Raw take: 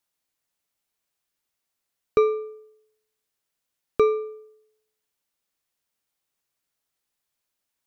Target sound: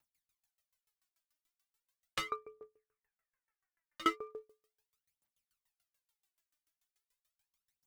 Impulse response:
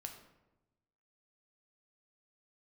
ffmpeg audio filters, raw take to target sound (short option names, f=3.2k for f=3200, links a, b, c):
-filter_complex "[0:a]asettb=1/sr,asplit=3[a][b][c];[a]atrim=end=2.344[d];[b]atrim=start=2.34:end=4.42,asetpts=PTS-STARTPTS,afade=t=in:d=0.004:c=qsin,afade=t=out:st=2.076:d=0.004:c=qsin,highshelf=f=2.6k:t=q:w=3:g=-12.5[e];[c]atrim=start=4.416[f];[d][e]acrossfade=d=0.004:c1=hsin:c2=qsin[g];[g][f]acrossfade=d=0.004:c1=qsin:c2=hsin,aeval=exprs='0.0891*(abs(mod(val(0)/0.0891+3,4)-2)-1)':c=same,aphaser=in_gain=1:out_gain=1:delay=3.4:decay=0.74:speed=0.38:type=triangular,equalizer=f=410:t=o:w=1.3:g=-9,aeval=exprs='val(0)*pow(10,-28*if(lt(mod(6.9*n/s,1),2*abs(6.9)/1000),1-mod(6.9*n/s,1)/(2*abs(6.9)/1000),(mod(6.9*n/s,1)-2*abs(6.9)/1000)/(1-2*abs(6.9)/1000))/20)':c=same"